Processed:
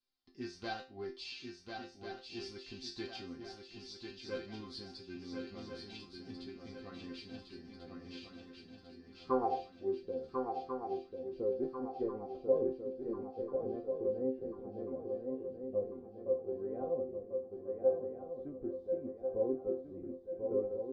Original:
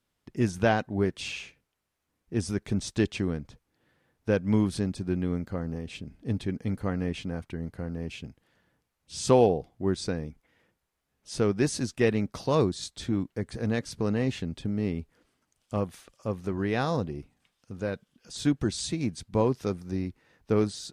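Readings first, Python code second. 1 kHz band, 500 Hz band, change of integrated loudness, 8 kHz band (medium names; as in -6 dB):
-7.5 dB, -6.0 dB, -10.0 dB, under -20 dB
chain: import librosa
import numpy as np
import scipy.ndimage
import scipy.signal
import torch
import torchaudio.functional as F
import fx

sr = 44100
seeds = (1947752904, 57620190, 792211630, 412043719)

y = fx.self_delay(x, sr, depth_ms=0.15)
y = fx.filter_sweep_lowpass(y, sr, from_hz=4600.0, to_hz=530.0, start_s=8.33, end_s=9.82, q=7.2)
y = fx.resonator_bank(y, sr, root=60, chord='sus4', decay_s=0.3)
y = fx.echo_swing(y, sr, ms=1392, ratio=3, feedback_pct=46, wet_db=-5.0)
y = y * librosa.db_to_amplitude(2.0)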